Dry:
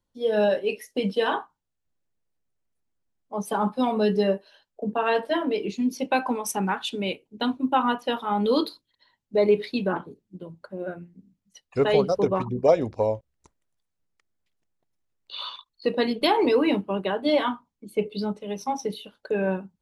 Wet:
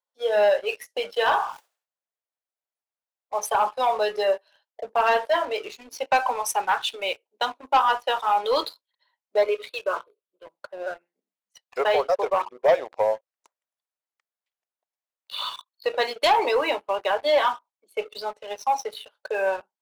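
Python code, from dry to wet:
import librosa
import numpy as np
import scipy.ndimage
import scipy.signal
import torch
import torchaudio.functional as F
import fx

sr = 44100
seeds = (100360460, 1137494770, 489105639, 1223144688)

y = fx.sustainer(x, sr, db_per_s=94.0, at=(1.27, 3.46), fade=0.02)
y = fx.fixed_phaser(y, sr, hz=1200.0, stages=8, at=(9.43, 10.46))
y = fx.bass_treble(y, sr, bass_db=-10, treble_db=-7, at=(11.81, 13.14))
y = scipy.signal.sosfilt(scipy.signal.butter(4, 580.0, 'highpass', fs=sr, output='sos'), y)
y = fx.high_shelf(y, sr, hz=2100.0, db=-5.5)
y = fx.leveller(y, sr, passes=2)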